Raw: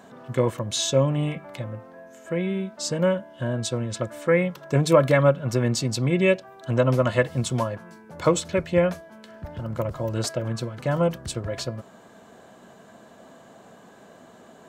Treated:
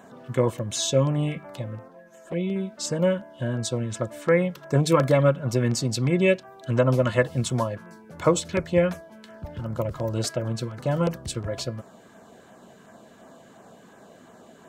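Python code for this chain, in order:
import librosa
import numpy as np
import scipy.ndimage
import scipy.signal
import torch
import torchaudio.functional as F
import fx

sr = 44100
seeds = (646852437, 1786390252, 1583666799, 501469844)

y = fx.env_flanger(x, sr, rest_ms=7.8, full_db=-21.5, at=(1.88, 2.56))
y = fx.filter_lfo_notch(y, sr, shape='saw_down', hz=2.8, low_hz=470.0, high_hz=5100.0, q=2.0)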